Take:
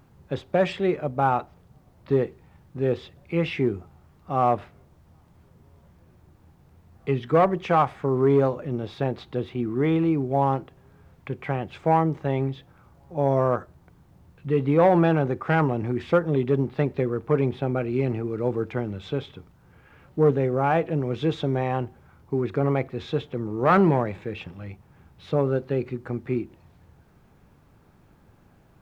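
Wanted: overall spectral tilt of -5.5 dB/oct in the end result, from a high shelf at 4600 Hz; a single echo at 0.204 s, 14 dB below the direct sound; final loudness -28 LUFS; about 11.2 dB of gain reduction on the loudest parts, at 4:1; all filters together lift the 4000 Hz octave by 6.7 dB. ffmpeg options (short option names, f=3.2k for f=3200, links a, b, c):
-af "equalizer=f=4k:t=o:g=5.5,highshelf=f=4.6k:g=6.5,acompressor=threshold=-28dB:ratio=4,aecho=1:1:204:0.2,volume=4.5dB"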